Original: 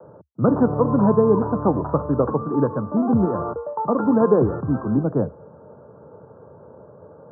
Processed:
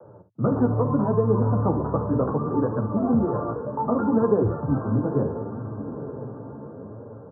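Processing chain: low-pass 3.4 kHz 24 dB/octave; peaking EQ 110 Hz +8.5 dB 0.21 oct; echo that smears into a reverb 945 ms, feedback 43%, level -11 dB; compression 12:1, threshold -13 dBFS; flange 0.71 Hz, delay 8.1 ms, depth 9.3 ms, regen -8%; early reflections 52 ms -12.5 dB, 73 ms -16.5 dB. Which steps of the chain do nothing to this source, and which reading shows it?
low-pass 3.4 kHz: input has nothing above 1.4 kHz

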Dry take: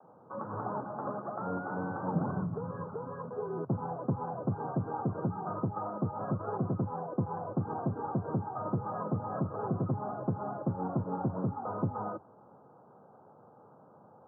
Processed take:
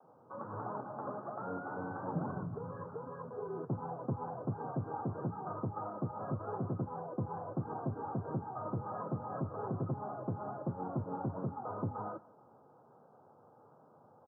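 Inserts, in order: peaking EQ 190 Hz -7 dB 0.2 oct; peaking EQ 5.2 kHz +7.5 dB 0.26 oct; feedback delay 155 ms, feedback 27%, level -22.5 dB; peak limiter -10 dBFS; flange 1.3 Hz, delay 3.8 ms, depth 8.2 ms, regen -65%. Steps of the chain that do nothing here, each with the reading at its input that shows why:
peaking EQ 5.2 kHz: input has nothing above 1.4 kHz; peak limiter -10 dBFS: peak at its input -20.0 dBFS

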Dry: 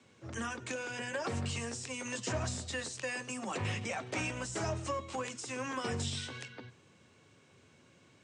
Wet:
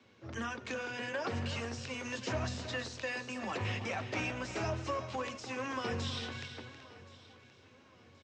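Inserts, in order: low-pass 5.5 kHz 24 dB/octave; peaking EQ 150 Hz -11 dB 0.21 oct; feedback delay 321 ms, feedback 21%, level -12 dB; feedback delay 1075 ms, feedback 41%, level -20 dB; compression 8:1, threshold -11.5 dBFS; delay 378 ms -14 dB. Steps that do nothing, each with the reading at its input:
compression, threshold -11.5 dBFS: peak at its input -24.0 dBFS

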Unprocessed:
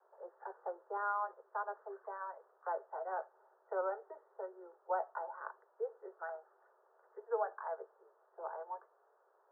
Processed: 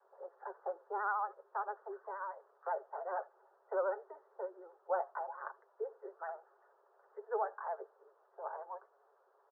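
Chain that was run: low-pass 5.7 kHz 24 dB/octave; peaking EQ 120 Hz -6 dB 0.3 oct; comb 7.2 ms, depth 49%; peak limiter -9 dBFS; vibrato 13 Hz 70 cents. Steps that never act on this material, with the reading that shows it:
low-pass 5.7 kHz: input has nothing above 1.7 kHz; peaking EQ 120 Hz: input has nothing below 340 Hz; peak limiter -9 dBFS: peak at its input -23.0 dBFS

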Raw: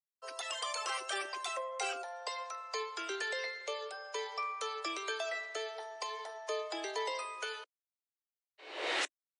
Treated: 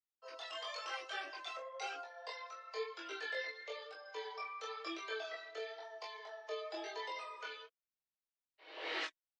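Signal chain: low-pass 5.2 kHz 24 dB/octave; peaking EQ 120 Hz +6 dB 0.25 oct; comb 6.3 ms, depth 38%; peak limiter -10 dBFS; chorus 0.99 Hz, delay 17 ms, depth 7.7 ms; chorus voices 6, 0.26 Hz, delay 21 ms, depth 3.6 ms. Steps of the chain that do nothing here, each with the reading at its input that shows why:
peaking EQ 120 Hz: input has nothing below 300 Hz; peak limiter -10 dBFS: peak at its input -20.5 dBFS

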